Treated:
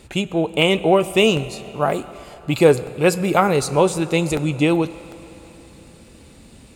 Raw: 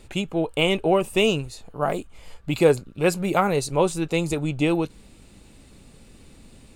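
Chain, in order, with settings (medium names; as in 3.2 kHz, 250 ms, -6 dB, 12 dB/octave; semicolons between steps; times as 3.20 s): high-pass 46 Hz; reverberation RT60 3.9 s, pre-delay 6 ms, DRR 13.5 dB; crackling interface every 0.75 s, samples 64, repeat, from 0.62 s; trim +4.5 dB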